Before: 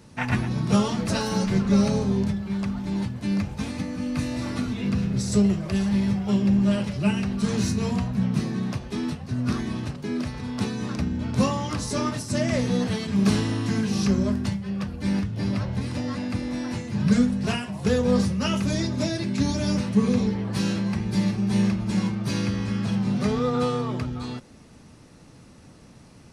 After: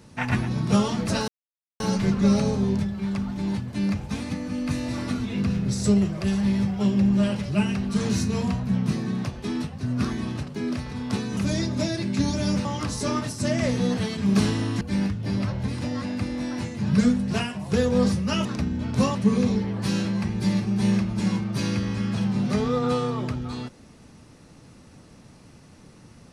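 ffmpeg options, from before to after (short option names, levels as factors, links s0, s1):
-filter_complex "[0:a]asplit=7[s0][s1][s2][s3][s4][s5][s6];[s0]atrim=end=1.28,asetpts=PTS-STARTPTS,afade=t=out:st=1.276:d=0.004:c=hsin,apad=pad_dur=0.52[s7];[s1]atrim=start=1.28:end=10.852,asetpts=PTS-STARTPTS,afade=t=in:d=0.004:c=hsin[s8];[s2]atrim=start=18.578:end=19.862[s9];[s3]atrim=start=11.548:end=13.712[s10];[s4]atrim=start=14.938:end=18.582[s11];[s5]atrim=start=10.848:end=11.552[s12];[s6]atrim=start=19.858[s13];[s7][s8]concat=n=2:v=0:a=1[s14];[s14][s9]acrossfade=d=0.004:c1=hsin:c2=hsin[s15];[s15][s10]acrossfade=d=0.004:c1=hsin:c2=hsin[s16];[s16][s11]acrossfade=d=0.004:c1=hsin:c2=hsin[s17];[s17][s12]acrossfade=d=0.004:c1=hsin:c2=hsin[s18];[s18][s13]acrossfade=d=0.004:c1=hsin:c2=hsin"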